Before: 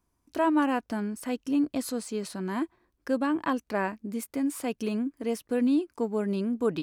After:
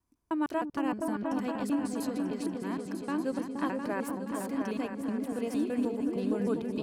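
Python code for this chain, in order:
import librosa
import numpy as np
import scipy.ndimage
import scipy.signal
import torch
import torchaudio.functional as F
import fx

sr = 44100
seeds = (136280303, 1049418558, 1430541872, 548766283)

y = fx.block_reorder(x, sr, ms=154.0, group=2)
y = fx.echo_opening(y, sr, ms=236, hz=200, octaves=2, feedback_pct=70, wet_db=0)
y = y * librosa.db_to_amplitude(-6.0)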